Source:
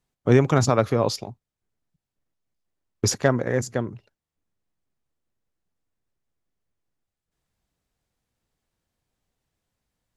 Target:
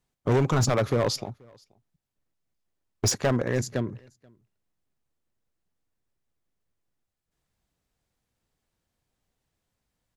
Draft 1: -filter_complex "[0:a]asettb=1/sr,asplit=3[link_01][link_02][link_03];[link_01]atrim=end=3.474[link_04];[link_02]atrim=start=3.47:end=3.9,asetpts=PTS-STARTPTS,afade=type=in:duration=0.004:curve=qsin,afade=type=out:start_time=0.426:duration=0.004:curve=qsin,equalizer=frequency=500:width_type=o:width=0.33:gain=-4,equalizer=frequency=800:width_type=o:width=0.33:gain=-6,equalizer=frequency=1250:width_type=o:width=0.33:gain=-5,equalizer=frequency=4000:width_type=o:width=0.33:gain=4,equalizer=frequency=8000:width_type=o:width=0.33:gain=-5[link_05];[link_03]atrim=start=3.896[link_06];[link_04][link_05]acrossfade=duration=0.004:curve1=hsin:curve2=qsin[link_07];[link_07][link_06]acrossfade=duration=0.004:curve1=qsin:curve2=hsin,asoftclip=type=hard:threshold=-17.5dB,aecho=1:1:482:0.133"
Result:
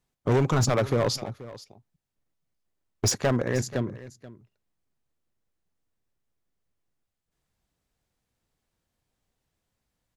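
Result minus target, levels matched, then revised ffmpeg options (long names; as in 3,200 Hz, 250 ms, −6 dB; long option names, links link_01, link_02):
echo-to-direct +11 dB
-filter_complex "[0:a]asettb=1/sr,asplit=3[link_01][link_02][link_03];[link_01]atrim=end=3.474[link_04];[link_02]atrim=start=3.47:end=3.9,asetpts=PTS-STARTPTS,afade=type=in:duration=0.004:curve=qsin,afade=type=out:start_time=0.426:duration=0.004:curve=qsin,equalizer=frequency=500:width_type=o:width=0.33:gain=-4,equalizer=frequency=800:width_type=o:width=0.33:gain=-6,equalizer=frequency=1250:width_type=o:width=0.33:gain=-5,equalizer=frequency=4000:width_type=o:width=0.33:gain=4,equalizer=frequency=8000:width_type=o:width=0.33:gain=-5[link_05];[link_03]atrim=start=3.896[link_06];[link_04][link_05]acrossfade=duration=0.004:curve1=hsin:curve2=qsin[link_07];[link_07][link_06]acrossfade=duration=0.004:curve1=qsin:curve2=hsin,asoftclip=type=hard:threshold=-17.5dB,aecho=1:1:482:0.0376"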